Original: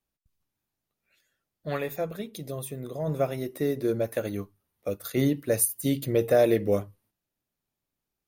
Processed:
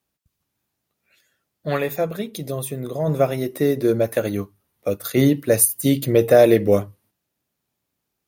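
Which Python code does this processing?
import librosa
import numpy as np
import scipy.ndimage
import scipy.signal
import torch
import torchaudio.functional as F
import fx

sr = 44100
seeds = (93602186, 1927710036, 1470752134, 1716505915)

y = scipy.signal.sosfilt(scipy.signal.butter(2, 66.0, 'highpass', fs=sr, output='sos'), x)
y = y * 10.0 ** (8.0 / 20.0)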